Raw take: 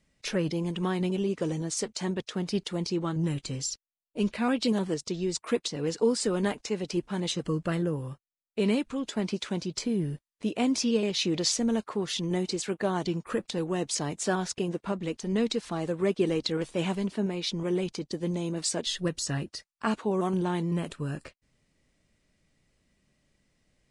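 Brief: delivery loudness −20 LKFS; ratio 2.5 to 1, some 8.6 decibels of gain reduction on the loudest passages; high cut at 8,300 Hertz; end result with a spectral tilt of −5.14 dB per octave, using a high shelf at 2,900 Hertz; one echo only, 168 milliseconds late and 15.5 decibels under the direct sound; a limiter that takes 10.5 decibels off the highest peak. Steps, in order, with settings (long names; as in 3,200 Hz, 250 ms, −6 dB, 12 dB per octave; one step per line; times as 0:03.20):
low-pass filter 8,300 Hz
high-shelf EQ 2,900 Hz −5 dB
downward compressor 2.5 to 1, threshold −33 dBFS
brickwall limiter −29.5 dBFS
single-tap delay 168 ms −15.5 dB
level +18.5 dB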